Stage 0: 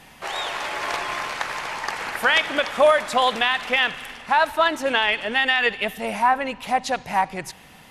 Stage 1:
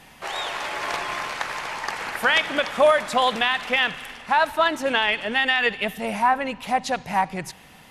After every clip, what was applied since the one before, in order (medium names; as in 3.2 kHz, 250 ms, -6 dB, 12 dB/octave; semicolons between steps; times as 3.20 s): dynamic bell 170 Hz, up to +5 dB, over -44 dBFS, Q 1.6; trim -1 dB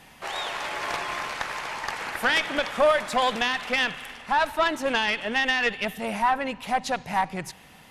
valve stage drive 13 dB, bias 0.5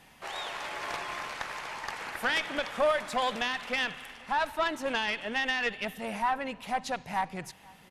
echo from a far wall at 85 m, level -24 dB; trim -6 dB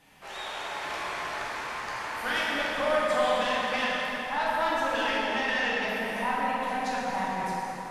plate-style reverb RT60 4.6 s, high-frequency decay 0.55×, DRR -8 dB; trim -5.5 dB